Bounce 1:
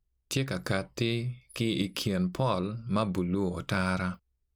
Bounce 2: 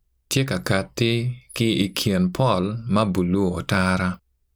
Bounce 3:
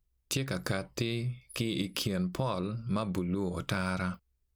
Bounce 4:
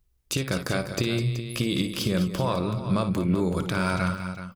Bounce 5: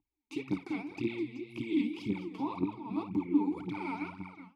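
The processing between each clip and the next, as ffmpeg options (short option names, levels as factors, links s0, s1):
-af "highshelf=f=9800:g=4,volume=2.66"
-af "acompressor=threshold=0.1:ratio=6,volume=0.422"
-filter_complex "[0:a]alimiter=limit=0.0944:level=0:latency=1:release=131,asplit=2[s0][s1];[s1]aecho=0:1:57|205|377:0.282|0.282|0.266[s2];[s0][s2]amix=inputs=2:normalize=0,volume=2.24"
-filter_complex "[0:a]aphaser=in_gain=1:out_gain=1:delay=4.7:decay=0.79:speed=1.9:type=triangular,asplit=3[s0][s1][s2];[s0]bandpass=f=300:t=q:w=8,volume=1[s3];[s1]bandpass=f=870:t=q:w=8,volume=0.501[s4];[s2]bandpass=f=2240:t=q:w=8,volume=0.355[s5];[s3][s4][s5]amix=inputs=3:normalize=0"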